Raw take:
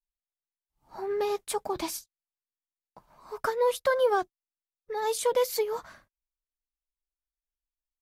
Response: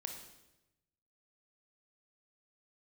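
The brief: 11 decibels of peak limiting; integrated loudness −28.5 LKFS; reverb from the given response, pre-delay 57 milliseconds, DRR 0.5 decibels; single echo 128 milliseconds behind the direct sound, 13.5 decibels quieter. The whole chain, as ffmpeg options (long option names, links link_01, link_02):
-filter_complex "[0:a]alimiter=level_in=2dB:limit=-24dB:level=0:latency=1,volume=-2dB,aecho=1:1:128:0.211,asplit=2[link_01][link_02];[1:a]atrim=start_sample=2205,adelay=57[link_03];[link_02][link_03]afir=irnorm=-1:irlink=0,volume=1.5dB[link_04];[link_01][link_04]amix=inputs=2:normalize=0,volume=3.5dB"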